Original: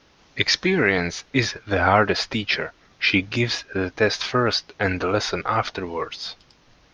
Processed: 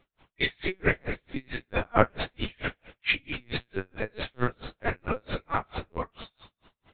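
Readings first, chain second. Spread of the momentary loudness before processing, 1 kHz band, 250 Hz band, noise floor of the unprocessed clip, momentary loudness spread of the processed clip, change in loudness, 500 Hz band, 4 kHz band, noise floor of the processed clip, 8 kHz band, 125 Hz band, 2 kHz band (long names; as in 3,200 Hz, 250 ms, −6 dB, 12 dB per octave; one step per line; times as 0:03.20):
10 LU, −8.0 dB, −10.0 dB, −57 dBFS, 10 LU, −9.0 dB, −8.5 dB, −12.0 dB, −84 dBFS, can't be measured, −7.5 dB, −8.5 dB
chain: coupled-rooms reverb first 0.6 s, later 2.2 s, from −24 dB, DRR −8.5 dB
linear-prediction vocoder at 8 kHz pitch kept
tremolo with a sine in dB 4.5 Hz, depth 40 dB
level −9.5 dB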